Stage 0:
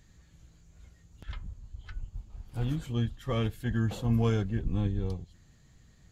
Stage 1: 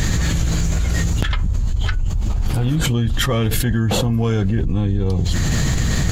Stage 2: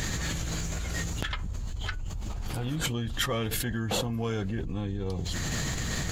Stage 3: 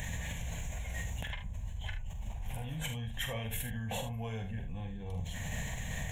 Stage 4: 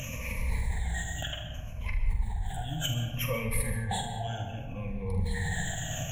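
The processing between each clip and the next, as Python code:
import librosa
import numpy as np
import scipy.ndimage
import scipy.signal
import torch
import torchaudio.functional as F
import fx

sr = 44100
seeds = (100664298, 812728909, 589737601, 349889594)

y1 = fx.env_flatten(x, sr, amount_pct=100)
y1 = F.gain(torch.from_numpy(y1), 5.5).numpy()
y2 = fx.low_shelf(y1, sr, hz=250.0, db=-8.5)
y2 = F.gain(torch.from_numpy(y2), -7.5).numpy()
y3 = fx.fixed_phaser(y2, sr, hz=1300.0, stages=6)
y3 = fx.room_early_taps(y3, sr, ms=(45, 76), db=(-8.0, -11.0))
y3 = F.gain(torch.from_numpy(y3), -5.5).numpy()
y4 = fx.spec_ripple(y3, sr, per_octave=0.89, drift_hz=-0.65, depth_db=22)
y4 = fx.rev_freeverb(y4, sr, rt60_s=1.9, hf_ratio=0.25, predelay_ms=90, drr_db=6.5)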